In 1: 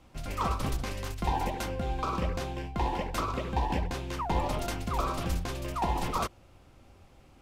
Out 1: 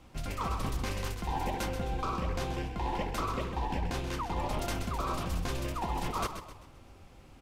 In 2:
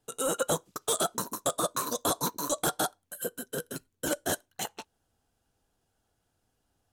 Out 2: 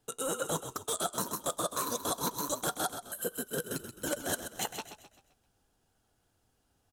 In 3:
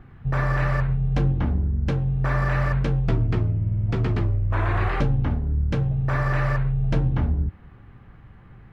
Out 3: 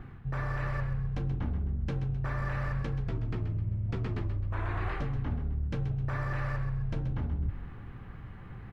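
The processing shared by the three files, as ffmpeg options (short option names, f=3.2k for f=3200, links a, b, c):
-filter_complex "[0:a]equalizer=f=630:t=o:w=0.42:g=-2,areverse,acompressor=threshold=-31dB:ratio=12,areverse,asplit=6[a][b][c][d][e][f];[b]adelay=130,afreqshift=-32,volume=-9.5dB[g];[c]adelay=260,afreqshift=-64,volume=-17dB[h];[d]adelay=390,afreqshift=-96,volume=-24.6dB[i];[e]adelay=520,afreqshift=-128,volume=-32.1dB[j];[f]adelay=650,afreqshift=-160,volume=-39.6dB[k];[a][g][h][i][j][k]amix=inputs=6:normalize=0,volume=2dB"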